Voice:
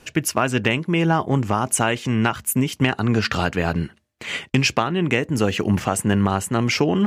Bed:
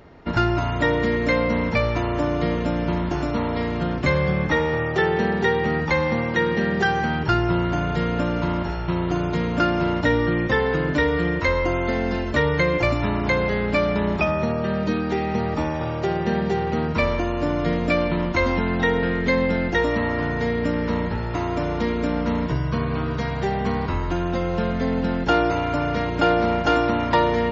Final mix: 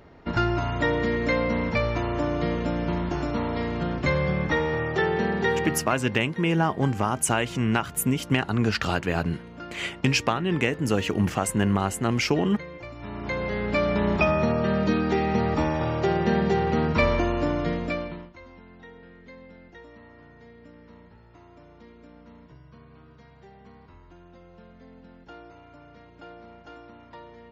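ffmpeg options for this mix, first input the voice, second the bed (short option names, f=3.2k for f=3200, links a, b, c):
-filter_complex "[0:a]adelay=5500,volume=-4dB[a];[1:a]volume=16dB,afade=t=out:st=5.59:d=0.37:silence=0.158489,afade=t=in:st=12.94:d=1.29:silence=0.105925,afade=t=out:st=17.23:d=1.08:silence=0.0473151[b];[a][b]amix=inputs=2:normalize=0"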